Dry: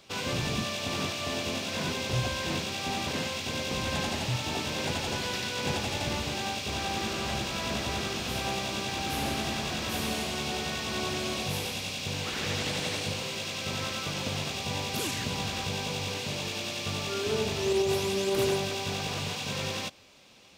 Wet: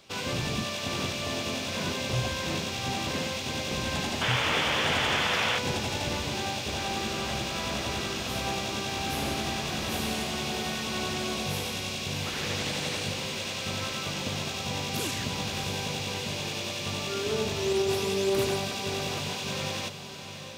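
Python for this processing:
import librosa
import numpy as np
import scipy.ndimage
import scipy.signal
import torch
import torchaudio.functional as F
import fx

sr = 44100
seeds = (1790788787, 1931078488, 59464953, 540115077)

y = fx.echo_diffused(x, sr, ms=674, feedback_pct=42, wet_db=-9)
y = fx.spec_paint(y, sr, seeds[0], shape='noise', start_s=4.21, length_s=1.38, low_hz=430.0, high_hz=3600.0, level_db=-28.0)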